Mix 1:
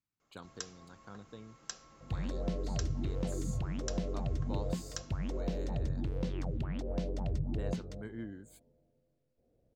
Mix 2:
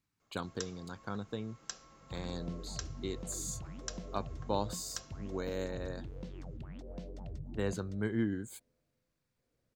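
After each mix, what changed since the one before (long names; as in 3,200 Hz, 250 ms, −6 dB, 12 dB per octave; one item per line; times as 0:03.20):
speech +10.5 dB
second sound −9.5 dB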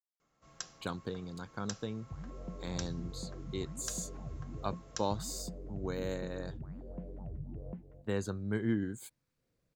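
speech: entry +0.50 s
second sound: add Gaussian smoothing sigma 5.1 samples
master: add parametric band 150 Hz +3.5 dB 0.58 octaves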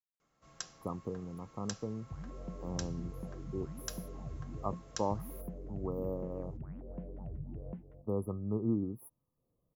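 speech: add linear-phase brick-wall band-stop 1,300–9,900 Hz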